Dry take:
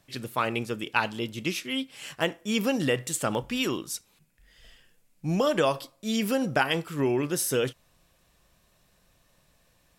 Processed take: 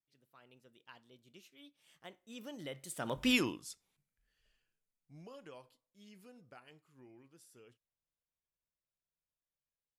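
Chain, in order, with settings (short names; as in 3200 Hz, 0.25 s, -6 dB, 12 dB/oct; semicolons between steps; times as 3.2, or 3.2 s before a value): Doppler pass-by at 3.3, 26 m/s, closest 1.8 m; AGC gain up to 4 dB; gain -3.5 dB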